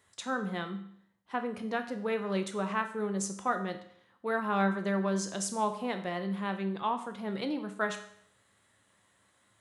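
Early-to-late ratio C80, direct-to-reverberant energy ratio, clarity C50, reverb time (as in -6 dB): 13.5 dB, 6.5 dB, 10.5 dB, 0.65 s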